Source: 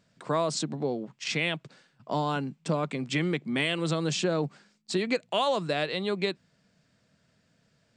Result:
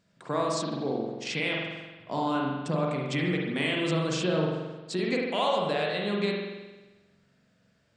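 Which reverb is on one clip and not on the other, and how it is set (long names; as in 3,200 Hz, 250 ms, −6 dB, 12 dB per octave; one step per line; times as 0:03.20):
spring reverb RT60 1.2 s, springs 44 ms, chirp 35 ms, DRR −2 dB
level −3.5 dB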